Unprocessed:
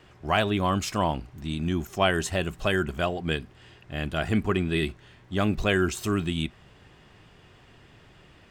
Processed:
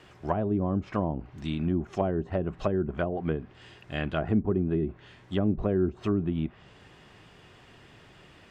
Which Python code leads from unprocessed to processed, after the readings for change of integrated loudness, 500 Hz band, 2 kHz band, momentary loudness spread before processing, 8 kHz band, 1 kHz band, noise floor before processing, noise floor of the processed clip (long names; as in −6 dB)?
−2.5 dB, −1.5 dB, −12.0 dB, 9 LU, below −20 dB, −7.0 dB, −55 dBFS, −55 dBFS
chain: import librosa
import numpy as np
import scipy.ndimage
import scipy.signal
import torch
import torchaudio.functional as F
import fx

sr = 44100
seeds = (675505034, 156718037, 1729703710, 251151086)

y = fx.low_shelf(x, sr, hz=92.0, db=-7.0)
y = fx.env_lowpass_down(y, sr, base_hz=440.0, full_db=-22.5)
y = y * 10.0 ** (1.5 / 20.0)